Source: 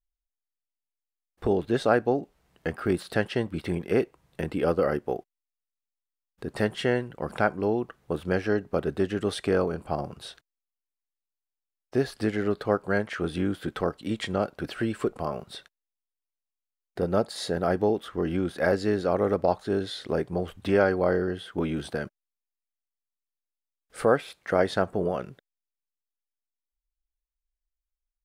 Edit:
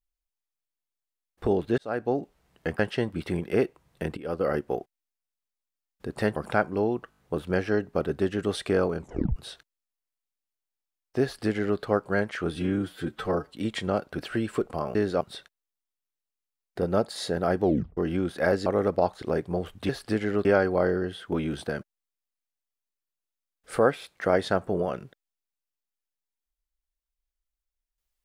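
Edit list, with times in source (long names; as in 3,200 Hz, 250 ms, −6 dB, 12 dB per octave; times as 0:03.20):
0:01.78–0:02.19: fade in
0:02.79–0:03.17: remove
0:04.55–0:04.92: fade in, from −18.5 dB
0:06.74–0:07.22: remove
0:07.96: stutter 0.02 s, 5 plays
0:09.77: tape stop 0.37 s
0:12.01–0:12.57: duplicate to 0:20.71
0:13.34–0:13.98: time-stretch 1.5×
0:17.83: tape stop 0.34 s
0:18.86–0:19.12: move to 0:15.41
0:19.68–0:20.04: remove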